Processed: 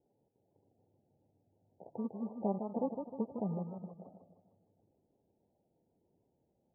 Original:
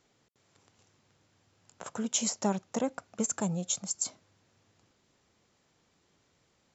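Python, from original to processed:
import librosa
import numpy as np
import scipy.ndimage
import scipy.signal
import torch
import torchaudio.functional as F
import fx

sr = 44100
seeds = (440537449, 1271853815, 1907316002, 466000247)

y = fx.bit_reversed(x, sr, seeds[0], block=32)
y = scipy.signal.sosfilt(scipy.signal.butter(6, 880.0, 'lowpass', fs=sr, output='sos'), y)
y = fx.low_shelf(y, sr, hz=270.0, db=-8.5)
y = fx.spec_topn(y, sr, count=32)
y = fx.echo_warbled(y, sr, ms=154, feedback_pct=45, rate_hz=2.8, cents=133, wet_db=-7.0)
y = F.gain(torch.from_numpy(y), 1.0).numpy()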